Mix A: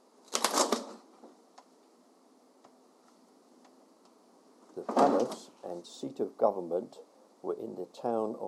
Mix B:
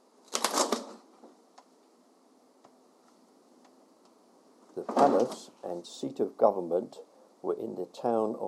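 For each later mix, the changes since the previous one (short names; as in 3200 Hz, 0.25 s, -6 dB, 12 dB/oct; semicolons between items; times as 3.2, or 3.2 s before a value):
speech +3.5 dB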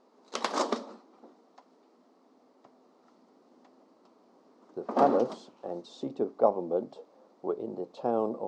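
master: add air absorption 140 m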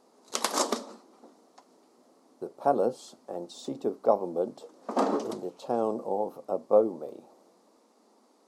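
speech: entry -2.35 s; master: remove air absorption 140 m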